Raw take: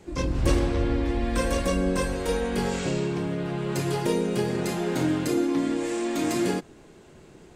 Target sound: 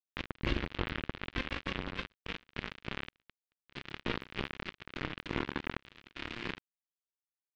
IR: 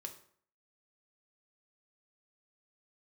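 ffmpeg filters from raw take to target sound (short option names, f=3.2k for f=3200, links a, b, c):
-filter_complex "[0:a]tiltshelf=f=1.1k:g=-4.5,asplit=2[a][b];[b]adelay=344,volume=-14dB,highshelf=f=4k:g=-7.74[c];[a][c]amix=inputs=2:normalize=0,asplit=2[d][e];[1:a]atrim=start_sample=2205[f];[e][f]afir=irnorm=-1:irlink=0,volume=-14.5dB[g];[d][g]amix=inputs=2:normalize=0,acrusher=bits=2:mix=0:aa=0.5,aeval=exprs='(tanh(35.5*val(0)+0.55)-tanh(0.55))/35.5':c=same,equalizer=f=720:t=o:w=1.4:g=-10.5,acompressor=threshold=-40dB:ratio=5,alimiter=level_in=8dB:limit=-24dB:level=0:latency=1:release=26,volume=-8dB,lowpass=f=3.2k:w=0.5412,lowpass=f=3.2k:w=1.3066,volume=16dB"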